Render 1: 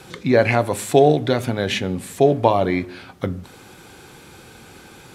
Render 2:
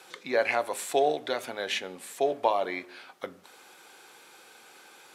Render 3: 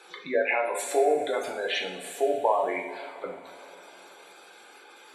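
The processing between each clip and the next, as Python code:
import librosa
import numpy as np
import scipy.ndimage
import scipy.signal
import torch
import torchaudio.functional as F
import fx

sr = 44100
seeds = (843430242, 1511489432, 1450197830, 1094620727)

y1 = scipy.signal.sosfilt(scipy.signal.butter(2, 550.0, 'highpass', fs=sr, output='sos'), x)
y1 = F.gain(torch.from_numpy(y1), -6.5).numpy()
y2 = fx.spec_gate(y1, sr, threshold_db=-15, keep='strong')
y2 = fx.rev_double_slope(y2, sr, seeds[0], early_s=0.56, late_s=4.0, knee_db=-17, drr_db=-0.5)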